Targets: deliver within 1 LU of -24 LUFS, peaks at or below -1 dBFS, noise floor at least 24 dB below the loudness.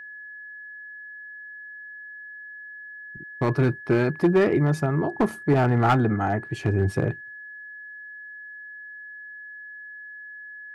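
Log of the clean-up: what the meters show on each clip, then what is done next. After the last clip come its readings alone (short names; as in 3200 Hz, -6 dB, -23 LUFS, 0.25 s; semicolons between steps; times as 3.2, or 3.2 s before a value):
clipped 0.5%; flat tops at -13.0 dBFS; steady tone 1700 Hz; tone level -38 dBFS; loudness -23.0 LUFS; peak -13.0 dBFS; loudness target -24.0 LUFS
-> clip repair -13 dBFS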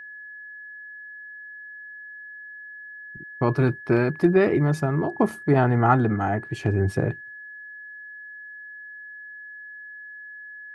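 clipped 0.0%; steady tone 1700 Hz; tone level -38 dBFS
-> notch 1700 Hz, Q 30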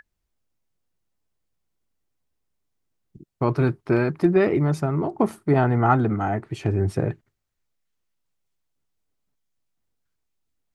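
steady tone none; loudness -22.5 LUFS; peak -5.0 dBFS; loudness target -24.0 LUFS
-> gain -1.5 dB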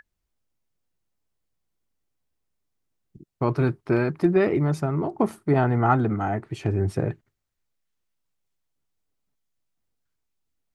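loudness -24.0 LUFS; peak -6.5 dBFS; noise floor -80 dBFS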